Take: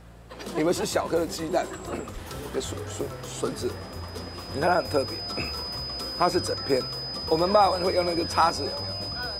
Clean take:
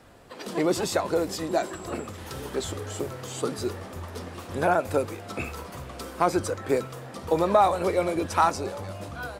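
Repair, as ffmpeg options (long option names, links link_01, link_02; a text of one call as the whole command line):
ffmpeg -i in.wav -filter_complex "[0:a]bandreject=frequency=57.3:width_type=h:width=4,bandreject=frequency=114.6:width_type=h:width=4,bandreject=frequency=171.9:width_type=h:width=4,bandreject=frequency=5000:width=30,asplit=3[link_01][link_02][link_03];[link_01]afade=type=out:start_time=2.13:duration=0.02[link_04];[link_02]highpass=frequency=140:width=0.5412,highpass=frequency=140:width=1.3066,afade=type=in:start_time=2.13:duration=0.02,afade=type=out:start_time=2.25:duration=0.02[link_05];[link_03]afade=type=in:start_time=2.25:duration=0.02[link_06];[link_04][link_05][link_06]amix=inputs=3:normalize=0" out.wav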